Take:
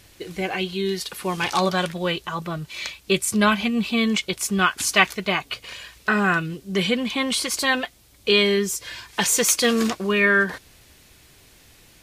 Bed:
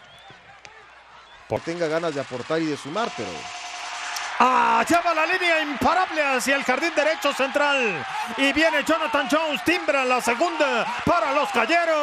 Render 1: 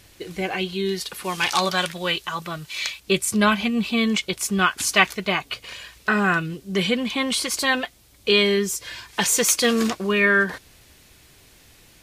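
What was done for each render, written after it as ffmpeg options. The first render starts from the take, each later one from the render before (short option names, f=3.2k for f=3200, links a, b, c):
-filter_complex "[0:a]asettb=1/sr,asplit=3[a][b][c];[a]atrim=end=1.244[d];[b]atrim=start=1.24:end=3,asetpts=PTS-STARTPTS,afade=t=in:d=0.004:c=qsin,afade=t=out:st=1.756:d=0.004:c=qsin,tiltshelf=f=970:g=-5[e];[c]atrim=start=2.996[f];[d][e]acrossfade=d=0.004:c1=hsin:c2=qsin[g];[g][f]acrossfade=d=0.004:c1=qsin:c2=hsin"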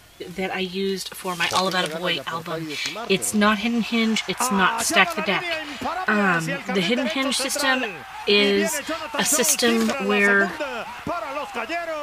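-filter_complex "[1:a]volume=-7.5dB[a];[0:a][a]amix=inputs=2:normalize=0"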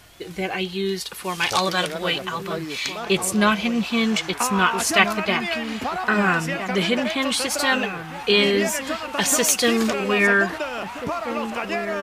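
-filter_complex "[0:a]asplit=2[a][b];[b]adelay=1633,volume=-9dB,highshelf=f=4k:g=-36.7[c];[a][c]amix=inputs=2:normalize=0"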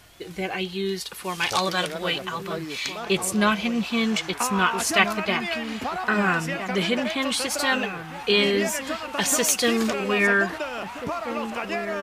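-af "volume=-2.5dB"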